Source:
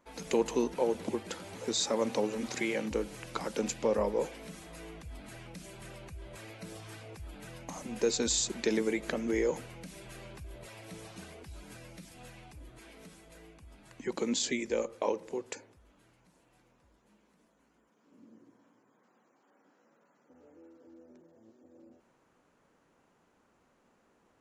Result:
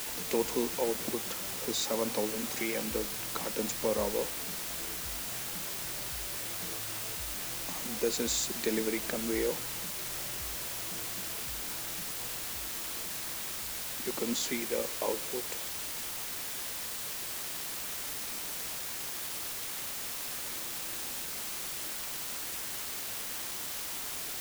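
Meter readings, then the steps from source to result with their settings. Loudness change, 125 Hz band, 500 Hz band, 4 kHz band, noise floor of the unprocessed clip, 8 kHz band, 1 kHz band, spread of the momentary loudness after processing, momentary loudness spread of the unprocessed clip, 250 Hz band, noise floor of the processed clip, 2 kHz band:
0.0 dB, -1.0 dB, -2.0 dB, +5.0 dB, -70 dBFS, +5.5 dB, +1.0 dB, 4 LU, 19 LU, -2.0 dB, -38 dBFS, +3.5 dB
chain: word length cut 6-bit, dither triangular; trim -2 dB

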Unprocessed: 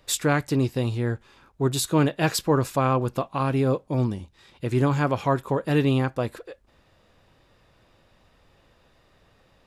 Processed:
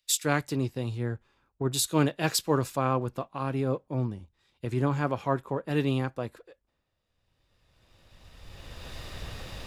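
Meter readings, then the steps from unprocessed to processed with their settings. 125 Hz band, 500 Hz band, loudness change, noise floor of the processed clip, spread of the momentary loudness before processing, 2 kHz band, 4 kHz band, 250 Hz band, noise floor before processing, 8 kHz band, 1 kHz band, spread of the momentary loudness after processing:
-5.5 dB, -5.5 dB, -5.0 dB, -78 dBFS, 7 LU, -4.5 dB, -1.5 dB, -5.5 dB, -62 dBFS, 0.0 dB, -5.0 dB, 16 LU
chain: recorder AGC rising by 11 dB/s; in parallel at -10 dB: crossover distortion -40.5 dBFS; on the sum: three bands expanded up and down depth 70%; trim -8.5 dB

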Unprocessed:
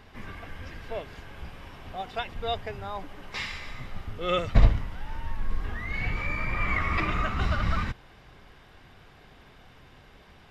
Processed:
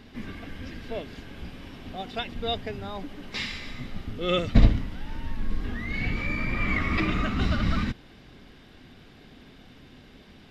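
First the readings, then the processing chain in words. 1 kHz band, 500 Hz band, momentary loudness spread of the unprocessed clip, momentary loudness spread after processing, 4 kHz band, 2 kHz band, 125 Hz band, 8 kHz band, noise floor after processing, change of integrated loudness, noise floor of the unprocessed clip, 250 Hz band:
-3.0 dB, +1.0 dB, 17 LU, 16 LU, +4.0 dB, +0.5 dB, +1.5 dB, no reading, -51 dBFS, +1.0 dB, -54 dBFS, +8.0 dB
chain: graphic EQ 250/1000/4000 Hz +11/-5/+5 dB

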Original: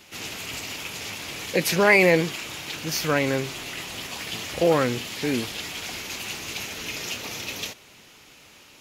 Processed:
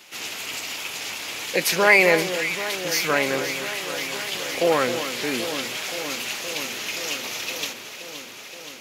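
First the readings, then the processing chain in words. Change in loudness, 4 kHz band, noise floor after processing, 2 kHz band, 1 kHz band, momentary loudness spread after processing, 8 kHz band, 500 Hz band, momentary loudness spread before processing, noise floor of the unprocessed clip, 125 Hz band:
+2.0 dB, +3.5 dB, -40 dBFS, +3.5 dB, +2.5 dB, 13 LU, +3.5 dB, +0.5 dB, 13 LU, -51 dBFS, -7.0 dB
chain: high-pass 530 Hz 6 dB/octave; on a send: echo whose repeats swap between lows and highs 261 ms, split 1.6 kHz, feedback 87%, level -10 dB; on the sum: trim +3 dB

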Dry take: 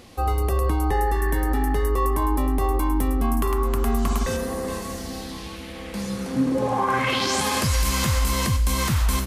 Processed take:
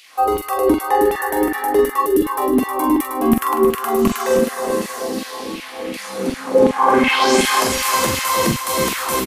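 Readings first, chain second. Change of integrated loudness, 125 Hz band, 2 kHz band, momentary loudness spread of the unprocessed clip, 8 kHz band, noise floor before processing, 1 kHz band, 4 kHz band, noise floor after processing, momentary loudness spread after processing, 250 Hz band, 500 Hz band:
+6.0 dB, -8.0 dB, +7.5 dB, 10 LU, +5.5 dB, -36 dBFS, +8.0 dB, +5.5 dB, -33 dBFS, 11 LU, +7.0 dB, +11.0 dB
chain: treble shelf 7.6 kHz +10.5 dB; LFO high-pass saw down 2.7 Hz 230–3000 Hz; tilt EQ -2 dB/octave; spectral selection erased 2.01–2.26 s, 560–2600 Hz; multi-tap echo 44/314/628 ms -6/-8/-17 dB; trim +4.5 dB

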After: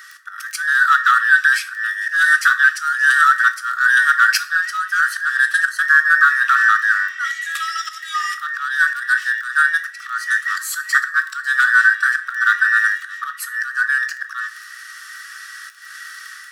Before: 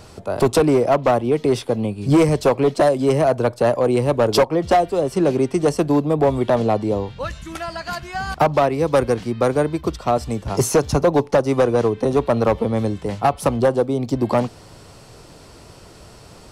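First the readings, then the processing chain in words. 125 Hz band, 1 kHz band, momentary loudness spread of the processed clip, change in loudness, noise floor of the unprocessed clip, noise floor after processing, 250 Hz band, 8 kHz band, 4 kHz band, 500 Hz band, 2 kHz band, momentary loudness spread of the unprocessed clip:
under -40 dB, +2.5 dB, 21 LU, +3.5 dB, -44 dBFS, -38 dBFS, under -40 dB, +2.5 dB, +4.5 dB, under -40 dB, +21.0 dB, 8 LU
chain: every band turned upside down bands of 2 kHz; treble shelf 9.3 kHz +5 dB; level rider gain up to 6 dB; slow attack 237 ms; in parallel at -10.5 dB: hard clipper -24 dBFS, distortion -3 dB; on the sum: crackle 12 per s -25 dBFS; brick-wall FIR high-pass 1.1 kHz; two-slope reverb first 0.33 s, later 1.7 s, from -21 dB, DRR 7.5 dB; trim -1 dB

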